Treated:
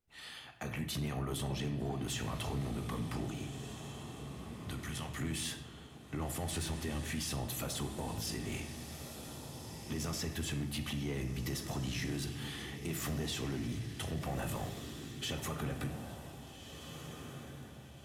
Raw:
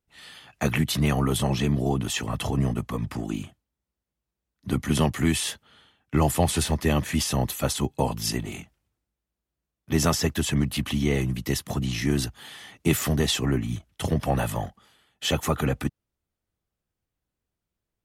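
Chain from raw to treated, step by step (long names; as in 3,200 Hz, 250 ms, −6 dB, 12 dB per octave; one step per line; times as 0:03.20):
downward compressor, threshold −29 dBFS, peak gain reduction 13 dB
0:03.26–0:05.10: parametric band 300 Hz −13 dB 2.1 octaves
brickwall limiter −24.5 dBFS, peak gain reduction 7.5 dB
feedback delay with all-pass diffusion 1,616 ms, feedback 40%, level −9 dB
convolution reverb RT60 0.85 s, pre-delay 3 ms, DRR 6.5 dB
soft clipping −25.5 dBFS, distortion −19 dB
level −3.5 dB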